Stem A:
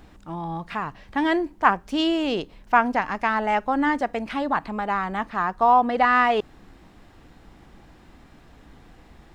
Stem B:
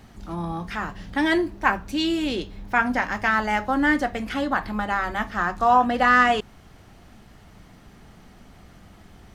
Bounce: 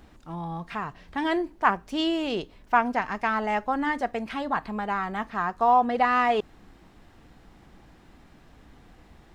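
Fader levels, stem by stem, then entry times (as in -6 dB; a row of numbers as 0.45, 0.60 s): -3.5, -15.0 dB; 0.00, 0.00 s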